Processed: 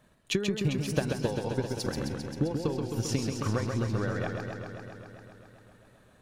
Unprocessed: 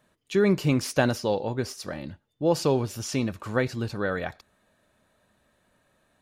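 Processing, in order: compressor 6:1, threshold -35 dBFS, peak gain reduction 17 dB; 1.02–3.05 notch comb 610 Hz; transient shaper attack +7 dB, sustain -5 dB; low shelf 150 Hz +8.5 dB; warbling echo 0.132 s, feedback 77%, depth 92 cents, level -5 dB; gain +1.5 dB

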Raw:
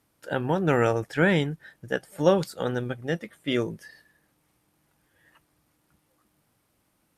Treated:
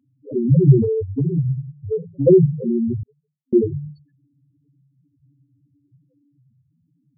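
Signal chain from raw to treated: reverb RT60 0.30 s, pre-delay 3 ms, DRR 3 dB; frequency shift -16 Hz; loudest bins only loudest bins 2; 0.82–2.27 compressor 4:1, threshold -19 dBFS, peak gain reduction 12 dB; 3.03–3.53 elliptic band-pass 1000–5100 Hz, stop band 50 dB

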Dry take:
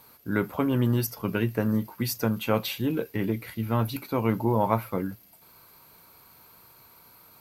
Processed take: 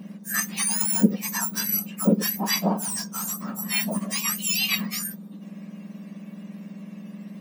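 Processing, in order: spectrum mirrored in octaves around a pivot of 1600 Hz; 2.81–3.43 hard clip -30.5 dBFS, distortion -26 dB; gain +5.5 dB

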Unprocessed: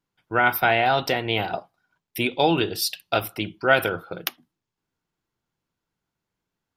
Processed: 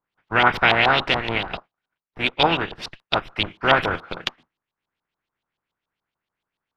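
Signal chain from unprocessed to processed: spectral contrast lowered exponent 0.44; in parallel at -6 dB: Schmitt trigger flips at -22.5 dBFS; on the sum: LFO low-pass saw up 7 Hz 890–3900 Hz; 1.38–3.28 upward expander 1.5:1, over -38 dBFS; gain -1 dB

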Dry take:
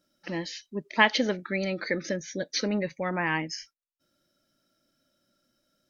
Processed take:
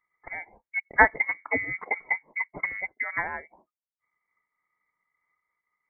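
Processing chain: 0.82–2.87 octaver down 1 oct, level +3 dB; steep high-pass 360 Hz 72 dB/oct; bell 510 Hz +3.5 dB 1.5 oct; transient shaper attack +6 dB, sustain -7 dB; inverted band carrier 2600 Hz; noise-modulated level, depth 65%

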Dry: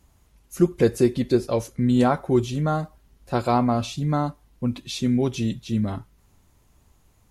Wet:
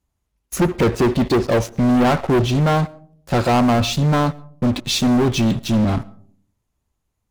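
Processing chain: treble ducked by the level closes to 2300 Hz, closed at -14.5 dBFS; sample leveller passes 5; on a send: reverb RT60 0.55 s, pre-delay 70 ms, DRR 23 dB; on the sum: gain -5.5 dB

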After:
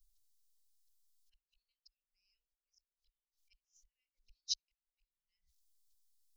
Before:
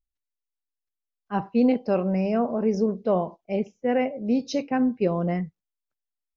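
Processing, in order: flipped gate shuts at -18 dBFS, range -35 dB; auto swell 0.632 s; inverse Chebyshev band-stop 120–1300 Hz, stop band 60 dB; gain +14 dB

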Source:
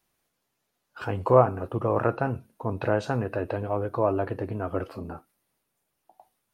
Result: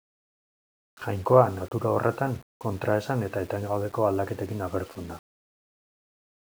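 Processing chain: expander -36 dBFS; requantised 8-bit, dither none

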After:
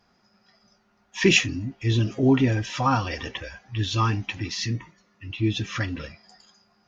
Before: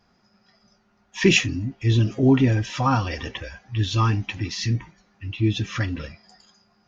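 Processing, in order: low shelf 240 Hz -4.5 dB; 4.65–5.3 notch comb 790 Hz

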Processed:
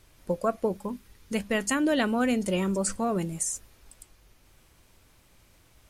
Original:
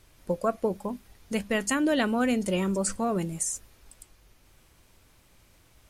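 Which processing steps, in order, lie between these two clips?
0.77–1.35 bell 700 Hz -15 dB 0.26 oct

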